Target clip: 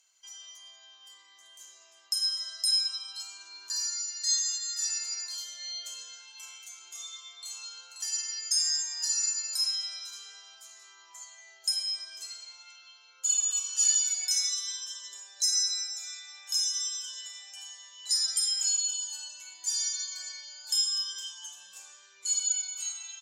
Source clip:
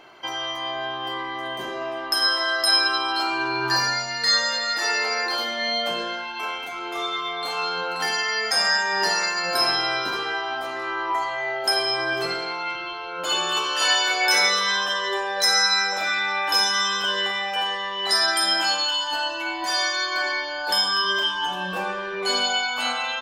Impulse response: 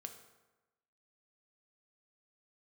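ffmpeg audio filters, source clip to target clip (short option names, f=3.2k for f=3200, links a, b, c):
-filter_complex "[0:a]aemphasis=mode=production:type=75kf,dynaudnorm=f=190:g=17:m=11.5dB,bandpass=f=6.9k:t=q:w=6.6:csg=0,asplit=2[a][b];[1:a]atrim=start_sample=2205[c];[b][c]afir=irnorm=-1:irlink=0,volume=-4.5dB[d];[a][d]amix=inputs=2:normalize=0,volume=-4.5dB"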